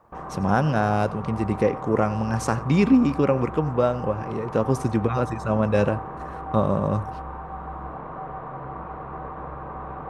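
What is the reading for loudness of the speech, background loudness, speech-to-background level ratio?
-23.5 LUFS, -35.0 LUFS, 11.5 dB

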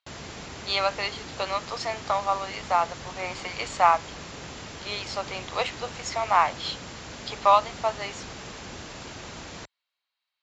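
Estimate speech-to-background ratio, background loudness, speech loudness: 12.5 dB, -39.5 LUFS, -27.0 LUFS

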